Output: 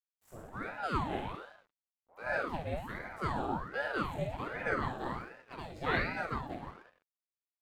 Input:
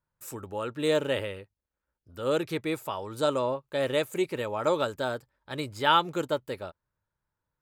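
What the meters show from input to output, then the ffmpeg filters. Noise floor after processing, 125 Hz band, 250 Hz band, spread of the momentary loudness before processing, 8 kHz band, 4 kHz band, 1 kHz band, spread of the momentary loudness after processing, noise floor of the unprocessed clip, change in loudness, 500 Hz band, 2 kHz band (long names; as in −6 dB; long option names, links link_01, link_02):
below −85 dBFS, −2.0 dB, −7.0 dB, 14 LU, −17.0 dB, −14.5 dB, −6.0 dB, 14 LU, below −85 dBFS, −7.5 dB, −11.5 dB, −1.0 dB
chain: -af "highshelf=frequency=2500:gain=-11.5,flanger=delay=16:depth=7.8:speed=1.1,aecho=1:1:50|107.5|173.6|249.7|337.1:0.631|0.398|0.251|0.158|0.1,aeval=exprs='sgn(val(0))*max(abs(val(0))-0.00119,0)':channel_layout=same,aeval=exprs='val(0)*sin(2*PI*680*n/s+680*0.7/1.3*sin(2*PI*1.3*n/s))':channel_layout=same,volume=-2.5dB"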